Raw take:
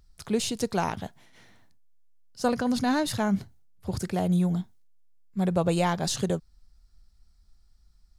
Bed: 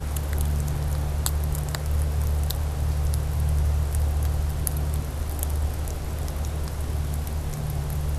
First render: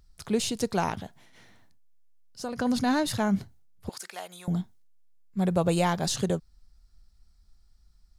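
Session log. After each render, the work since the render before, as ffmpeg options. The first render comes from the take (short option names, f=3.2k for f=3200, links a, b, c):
-filter_complex "[0:a]asettb=1/sr,asplit=3[a][b][c];[a]atrim=end=1.024[d];[b]atrim=start=1.02:end=2.59,asetpts=PTS-STARTPTS,afade=t=in:d=0.004:c=qsin,afade=t=out:st=1.566:d=0.004:c=qsin,acompressor=threshold=-37dB:ratio=2:attack=3.2:release=140:knee=1:detection=peak[e];[c]atrim=start=2.586[f];[d][e]acrossfade=d=0.004:c1=hsin:c2=qsin[g];[g][f]acrossfade=d=0.004:c1=qsin:c2=hsin,asettb=1/sr,asplit=3[h][i][j];[h]atrim=end=3.894[k];[i]atrim=start=3.89:end=4.48,asetpts=PTS-STARTPTS,afade=t=in:d=0.004:c=qsin,afade=t=out:st=0.586:d=0.004:c=qsin,highpass=1.1k[l];[j]atrim=start=4.476[m];[k][l]acrossfade=d=0.004:c1=hsin:c2=qsin[n];[n][m]acrossfade=d=0.004:c1=qsin:c2=hsin,asettb=1/sr,asplit=3[o][p][q];[o]atrim=end=5.474[r];[p]atrim=start=5.47:end=6.06,asetpts=PTS-STARTPTS,afade=t=in:d=0.004:c=qsin,afade=t=out:st=0.586:d=0.004:c=qsin,highshelf=f=9.8k:g=6[s];[q]atrim=start=6.056[t];[r][s]acrossfade=d=0.004:c1=hsin:c2=qsin[u];[u][t]acrossfade=d=0.004:c1=qsin:c2=hsin"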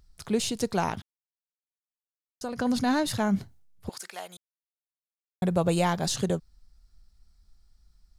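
-filter_complex "[0:a]asplit=5[a][b][c][d][e];[a]atrim=end=1.02,asetpts=PTS-STARTPTS,afade=t=out:st=1.016:d=0.004:c=hsin[f];[b]atrim=start=1.02:end=2.41,asetpts=PTS-STARTPTS,volume=0[g];[c]atrim=start=2.41:end=4.37,asetpts=PTS-STARTPTS,afade=t=in:d=0.004:c=hsin,afade=t=out:st=1.956:d=0.004:c=hsin[h];[d]atrim=start=4.37:end=5.42,asetpts=PTS-STARTPTS,volume=0[i];[e]atrim=start=5.42,asetpts=PTS-STARTPTS,afade=t=in:d=0.004:c=hsin[j];[f][g][h][i][j]concat=n=5:v=0:a=1"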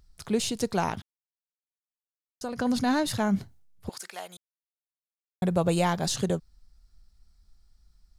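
-af anull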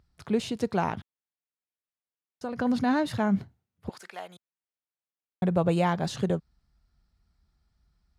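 -af "highpass=74,bass=f=250:g=1,treble=f=4k:g=-13"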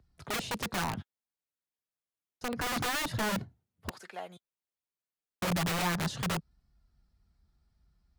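-filter_complex "[0:a]acrossover=split=140|820[a][b][c];[b]aeval=exprs='(mod(23.7*val(0)+1,2)-1)/23.7':c=same[d];[c]flanger=delay=2.7:depth=8.4:regen=25:speed=0.3:shape=sinusoidal[e];[a][d][e]amix=inputs=3:normalize=0"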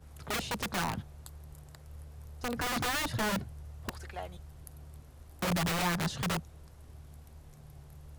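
-filter_complex "[1:a]volume=-23.5dB[a];[0:a][a]amix=inputs=2:normalize=0"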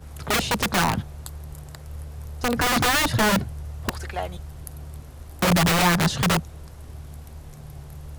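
-af "volume=11.5dB"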